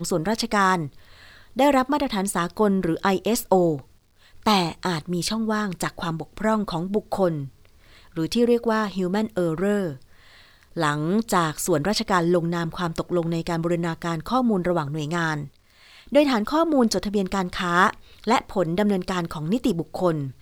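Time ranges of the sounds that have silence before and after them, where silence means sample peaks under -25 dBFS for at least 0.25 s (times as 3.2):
1.59–3.75
4.46–7.44
8.17–9.92
10.77–15.43
16.12–17.9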